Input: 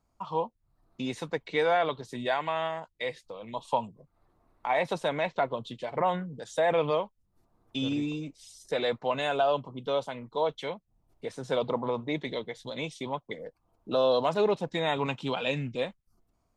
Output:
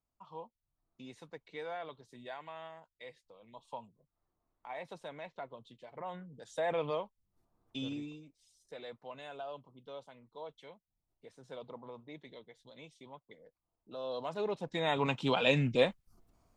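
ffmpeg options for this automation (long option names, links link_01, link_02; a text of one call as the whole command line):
ffmpeg -i in.wav -af "volume=14dB,afade=type=in:start_time=6.03:duration=0.61:silence=0.375837,afade=type=out:start_time=7.8:duration=0.44:silence=0.316228,afade=type=in:start_time=13.95:duration=0.61:silence=0.354813,afade=type=in:start_time=14.56:duration=1.23:silence=0.223872" out.wav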